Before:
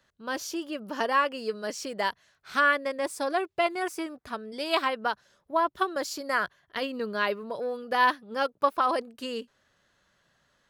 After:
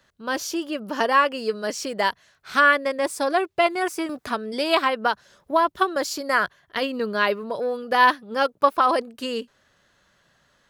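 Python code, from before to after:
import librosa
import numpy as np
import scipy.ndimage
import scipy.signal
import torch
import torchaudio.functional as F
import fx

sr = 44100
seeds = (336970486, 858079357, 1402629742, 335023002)

y = fx.band_squash(x, sr, depth_pct=40, at=(4.09, 5.72))
y = F.gain(torch.from_numpy(y), 6.0).numpy()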